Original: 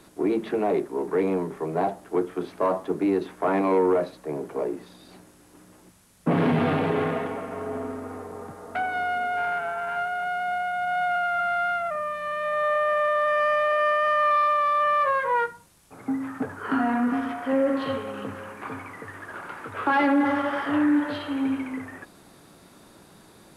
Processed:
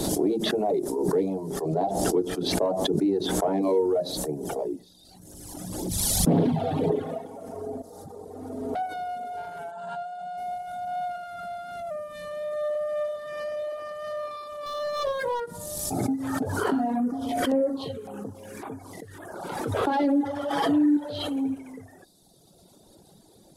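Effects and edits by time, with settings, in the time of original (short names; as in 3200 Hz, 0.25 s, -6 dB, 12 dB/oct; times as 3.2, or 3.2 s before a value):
1.61–3.63 high shelf 9500 Hz -9 dB
4.28–7.04 phaser 1.9 Hz, delay 1.6 ms, feedback 31%
7.82–8.75 reverse
9.71–10.38 speaker cabinet 160–8600 Hz, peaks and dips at 180 Hz +4 dB, 290 Hz -8 dB, 410 Hz -4 dB, 2200 Hz -8 dB, 5800 Hz -8 dB
12.13–12.79 echo throw 0.37 s, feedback 70%, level -11.5 dB
14.66–15.4 sample leveller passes 1
16.96–19.44 LFO notch saw down 1.8 Hz 580–6200 Hz
20.5–20.97 comb 6.2 ms, depth 47%
whole clip: reverb removal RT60 1.8 s; band shelf 1700 Hz -14.5 dB; backwards sustainer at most 29 dB/s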